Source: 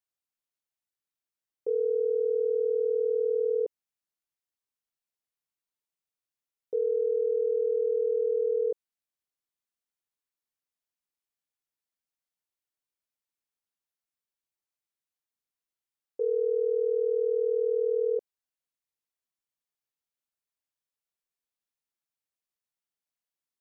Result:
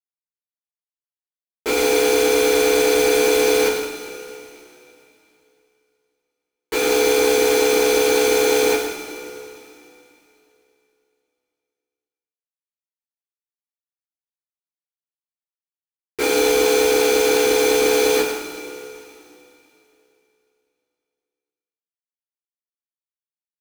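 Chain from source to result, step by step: sine-wave speech; bell 310 Hz +13.5 dB 0.2 oct; comb 6.2 ms, depth 50%; sample leveller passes 5; limiter -19.5 dBFS, peak gain reduction 3 dB; sample leveller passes 3; vowel filter u; bit-crush 7-bit; sine folder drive 4 dB, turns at -29.5 dBFS; tapped delay 0.107/0.172 s -8/-12 dB; two-slope reverb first 0.27 s, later 3 s, from -18 dB, DRR -8 dB; gain +7.5 dB

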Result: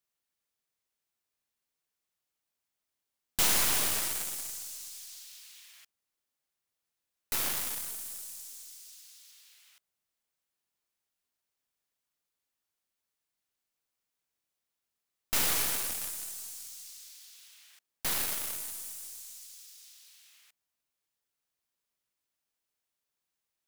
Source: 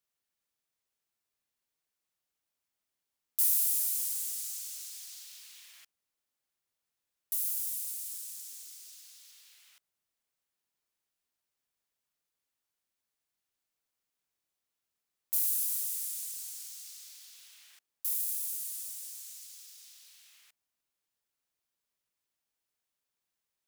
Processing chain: tracing distortion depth 0.064 ms; in parallel at -7 dB: bit-crush 5-bit

